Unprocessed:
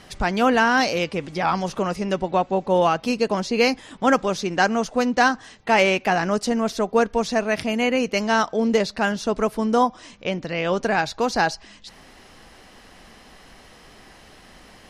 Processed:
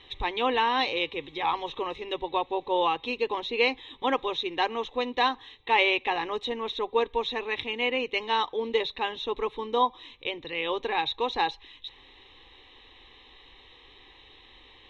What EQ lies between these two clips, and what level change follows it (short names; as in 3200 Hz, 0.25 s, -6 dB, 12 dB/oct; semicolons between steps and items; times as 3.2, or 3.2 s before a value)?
dynamic EQ 850 Hz, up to +4 dB, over -28 dBFS, Q 1.1; ladder low-pass 3900 Hz, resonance 90%; fixed phaser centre 970 Hz, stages 8; +7.0 dB